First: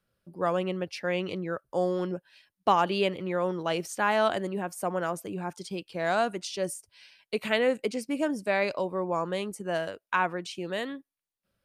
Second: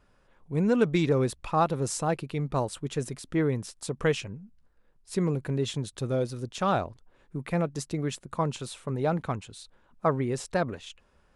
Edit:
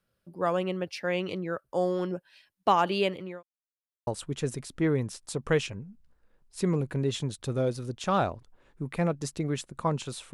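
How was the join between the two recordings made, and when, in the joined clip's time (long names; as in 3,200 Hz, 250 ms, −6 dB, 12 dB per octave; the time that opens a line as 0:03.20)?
first
0:02.96–0:03.43: fade out equal-power
0:03.43–0:04.07: silence
0:04.07: continue with second from 0:02.61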